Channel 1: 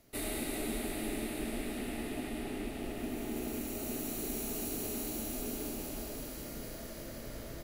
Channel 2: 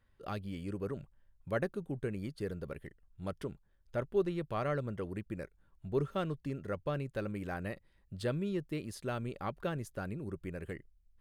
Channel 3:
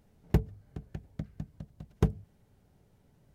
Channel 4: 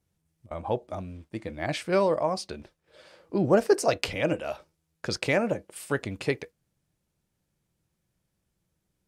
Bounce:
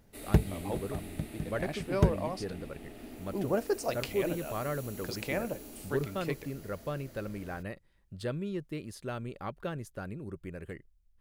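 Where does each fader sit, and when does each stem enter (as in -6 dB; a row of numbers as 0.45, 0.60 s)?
-8.5, -0.5, +1.5, -9.0 dB; 0.00, 0.00, 0.00, 0.00 s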